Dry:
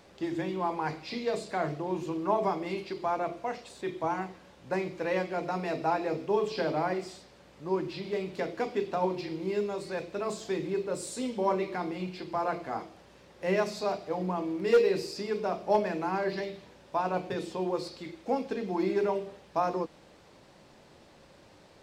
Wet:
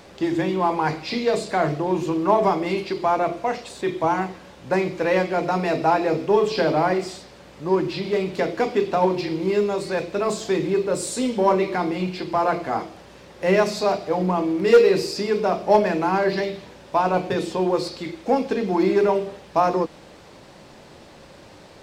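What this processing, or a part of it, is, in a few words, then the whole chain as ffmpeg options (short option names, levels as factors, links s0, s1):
parallel distortion: -filter_complex "[0:a]asplit=2[s0][s1];[s1]asoftclip=type=hard:threshold=0.0282,volume=0.251[s2];[s0][s2]amix=inputs=2:normalize=0,volume=2.66"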